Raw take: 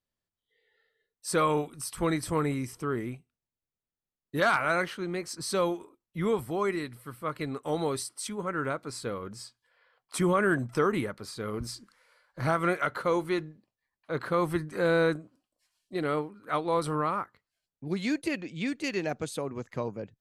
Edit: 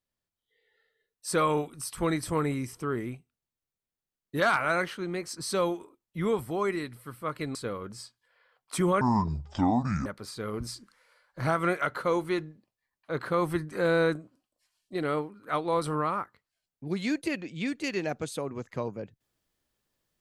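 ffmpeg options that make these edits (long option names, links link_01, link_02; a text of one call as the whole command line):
ffmpeg -i in.wav -filter_complex "[0:a]asplit=4[link_01][link_02][link_03][link_04];[link_01]atrim=end=7.552[link_05];[link_02]atrim=start=8.958:end=10.424[link_06];[link_03]atrim=start=10.42:end=11.06,asetpts=PTS-STARTPTS,asetrate=26901,aresample=44100[link_07];[link_04]atrim=start=11.056[link_08];[link_05][link_06]acrossfade=duration=0.004:curve1=hsin:curve2=hsin[link_09];[link_09][link_07]acrossfade=duration=0.004:curve1=hsin:curve2=hsin[link_10];[link_10][link_08]acrossfade=duration=0.004:curve1=hsin:curve2=hsin" out.wav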